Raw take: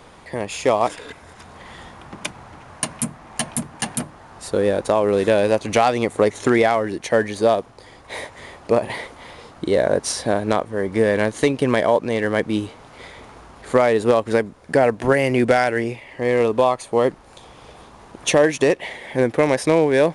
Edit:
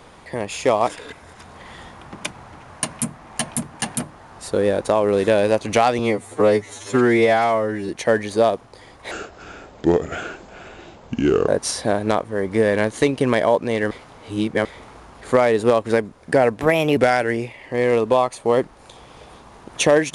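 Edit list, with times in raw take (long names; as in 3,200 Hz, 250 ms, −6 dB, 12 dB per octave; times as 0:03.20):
0:05.99–0:06.94: time-stretch 2×
0:08.16–0:09.89: play speed 73%
0:12.32–0:13.06: reverse
0:15.02–0:15.44: play speed 118%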